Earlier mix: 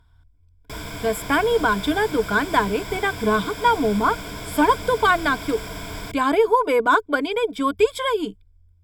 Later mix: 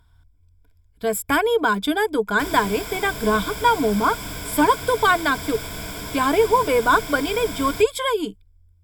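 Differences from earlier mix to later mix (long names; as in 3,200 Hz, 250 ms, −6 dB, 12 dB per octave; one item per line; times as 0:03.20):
background: entry +1.70 s
master: add high-shelf EQ 7,000 Hz +8.5 dB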